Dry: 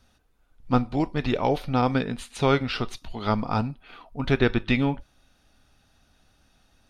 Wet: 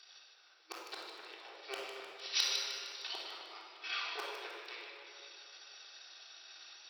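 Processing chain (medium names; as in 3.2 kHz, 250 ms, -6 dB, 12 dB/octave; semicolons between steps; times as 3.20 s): partial rectifier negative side -12 dB; FFT band-pass 320–5900 Hz; inverted gate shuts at -29 dBFS, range -30 dB; overload inside the chain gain 31.5 dB; differentiator; two-band feedback delay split 1.8 kHz, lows 259 ms, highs 153 ms, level -7 dB; simulated room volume 2100 m³, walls mixed, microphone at 3.5 m; trim +17.5 dB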